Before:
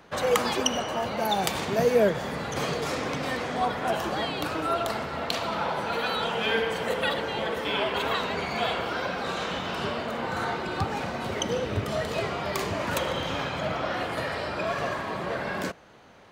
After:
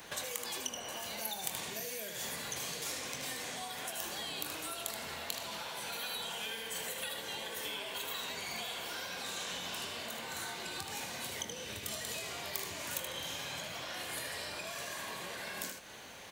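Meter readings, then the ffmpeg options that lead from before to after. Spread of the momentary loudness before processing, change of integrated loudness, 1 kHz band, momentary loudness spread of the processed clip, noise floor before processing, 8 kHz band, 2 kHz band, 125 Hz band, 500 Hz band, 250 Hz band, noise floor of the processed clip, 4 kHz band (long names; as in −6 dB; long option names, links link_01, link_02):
5 LU, −10.5 dB, −16.0 dB, 3 LU, −34 dBFS, −0.5 dB, −10.5 dB, −18.5 dB, −18.5 dB, −18.0 dB, −45 dBFS, −6.0 dB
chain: -filter_complex "[0:a]acrossover=split=1900|5100[link_01][link_02][link_03];[link_01]acompressor=threshold=-37dB:ratio=4[link_04];[link_02]acompressor=threshold=-46dB:ratio=4[link_05];[link_03]acompressor=threshold=-48dB:ratio=4[link_06];[link_04][link_05][link_06]amix=inputs=3:normalize=0,bandreject=frequency=1300:width=9.7,aecho=1:1:77:0.398,acompressor=threshold=-42dB:ratio=6,equalizer=frequency=4900:width=3.6:gain=-3.5,crystalizer=i=7.5:c=0,asplit=2[link_07][link_08];[link_08]adelay=23,volume=-10.5dB[link_09];[link_07][link_09]amix=inputs=2:normalize=0,volume=-3dB"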